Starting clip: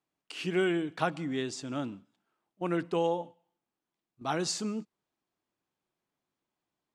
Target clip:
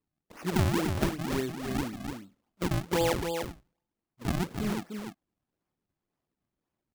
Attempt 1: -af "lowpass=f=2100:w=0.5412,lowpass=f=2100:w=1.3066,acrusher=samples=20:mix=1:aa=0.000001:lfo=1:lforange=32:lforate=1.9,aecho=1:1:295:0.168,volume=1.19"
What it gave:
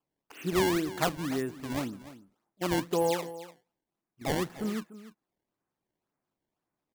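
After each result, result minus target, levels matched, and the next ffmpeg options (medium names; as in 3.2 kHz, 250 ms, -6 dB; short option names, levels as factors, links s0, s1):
decimation with a swept rate: distortion -12 dB; echo-to-direct -9.5 dB
-af "lowpass=f=2100:w=0.5412,lowpass=f=2100:w=1.3066,acrusher=samples=54:mix=1:aa=0.000001:lfo=1:lforange=86.4:lforate=1.9,aecho=1:1:295:0.168,volume=1.19"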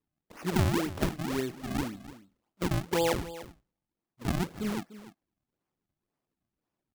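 echo-to-direct -9.5 dB
-af "lowpass=f=2100:w=0.5412,lowpass=f=2100:w=1.3066,acrusher=samples=54:mix=1:aa=0.000001:lfo=1:lforange=86.4:lforate=1.9,aecho=1:1:295:0.501,volume=1.19"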